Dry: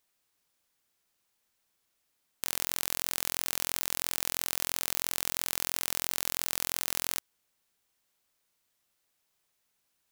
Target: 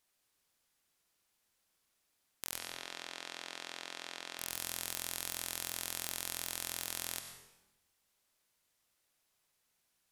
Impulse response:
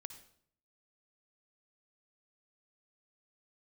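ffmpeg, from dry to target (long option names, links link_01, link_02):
-filter_complex "[0:a]alimiter=limit=-9dB:level=0:latency=1,asplit=3[link_01][link_02][link_03];[link_01]afade=type=out:start_time=2.57:duration=0.02[link_04];[link_02]highpass=270,lowpass=4100,afade=type=in:start_time=2.57:duration=0.02,afade=type=out:start_time=4.38:duration=0.02[link_05];[link_03]afade=type=in:start_time=4.38:duration=0.02[link_06];[link_04][link_05][link_06]amix=inputs=3:normalize=0[link_07];[1:a]atrim=start_sample=2205,asetrate=26019,aresample=44100[link_08];[link_07][link_08]afir=irnorm=-1:irlink=0,volume=1.5dB"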